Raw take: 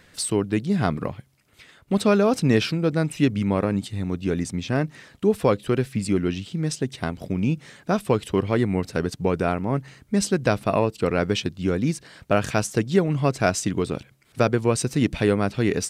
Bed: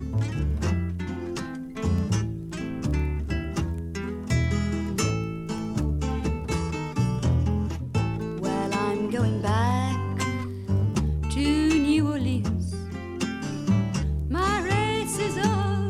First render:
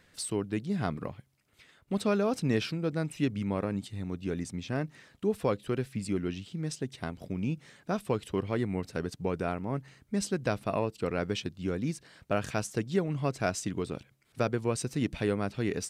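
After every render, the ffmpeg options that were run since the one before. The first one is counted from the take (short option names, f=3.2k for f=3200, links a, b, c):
-af "volume=-9dB"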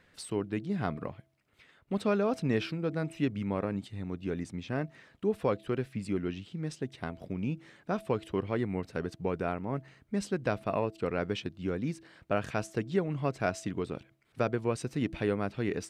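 -af "bass=f=250:g=-2,treble=f=4k:g=-9,bandreject=f=327.8:t=h:w=4,bandreject=f=655.6:t=h:w=4"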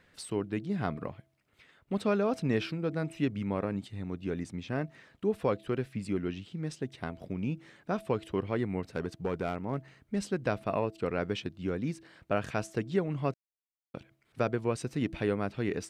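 -filter_complex "[0:a]asettb=1/sr,asplit=3[a][b][c];[a]atrim=end=8.834[d];[b]atrim=start=8.83:end=10.26,asetpts=PTS-STARTPTS,afade=t=in:d=0.004:c=qsin,afade=t=out:st=1.426:d=0.004:c=qsin,asoftclip=type=hard:threshold=-24dB[e];[c]atrim=start=10.256[f];[d][e]acrossfade=d=0.004:c1=hsin:c2=qsin[g];[g][f]acrossfade=d=0.004:c1=qsin:c2=hsin,asplit=3[h][i][j];[h]atrim=end=13.34,asetpts=PTS-STARTPTS,afade=t=out:st=13.336:d=0.004:c=hsin[k];[i]atrim=start=13.34:end=13.94,asetpts=PTS-STARTPTS,volume=0[l];[j]atrim=start=13.94,asetpts=PTS-STARTPTS,afade=t=in:d=0.004:c=hsin[m];[k][l][m]concat=n=3:v=0:a=1"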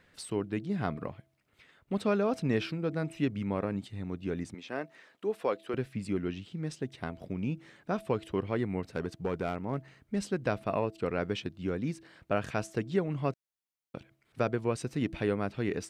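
-filter_complex "[0:a]asettb=1/sr,asplit=3[a][b][c];[a]atrim=end=4.544[d];[b]atrim=start=4.54:end=5.74,asetpts=PTS-STARTPTS,afade=t=in:d=0.004:c=qsin,afade=t=out:st=1.196:d=0.004:c=qsin,highpass=350[e];[c]atrim=start=5.736[f];[d][e]acrossfade=d=0.004:c1=hsin:c2=qsin[g];[g][f]acrossfade=d=0.004:c1=qsin:c2=hsin"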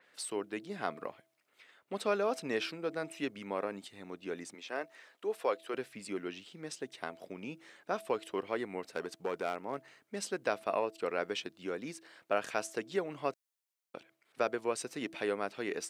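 -af "highpass=420,adynamicequalizer=threshold=0.00158:dfrequency=4800:dqfactor=0.7:tfrequency=4800:tqfactor=0.7:attack=5:release=100:ratio=0.375:range=2.5:mode=boostabove:tftype=highshelf"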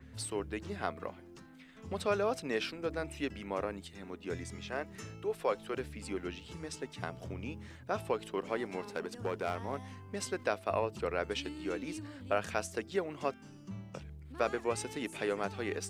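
-filter_complex "[1:a]volume=-22dB[a];[0:a][a]amix=inputs=2:normalize=0"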